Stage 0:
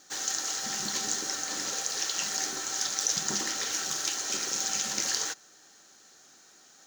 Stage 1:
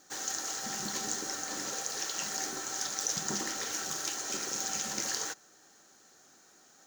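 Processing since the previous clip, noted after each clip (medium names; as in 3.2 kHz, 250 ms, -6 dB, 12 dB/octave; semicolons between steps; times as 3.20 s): peaking EQ 3.8 kHz -6.5 dB 2.2 oct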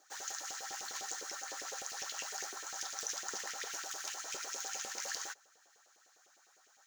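LFO high-pass saw up 9.9 Hz 410–2800 Hz; trim -7.5 dB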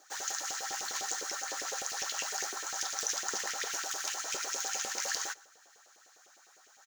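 delay 119 ms -23.5 dB; trim +6 dB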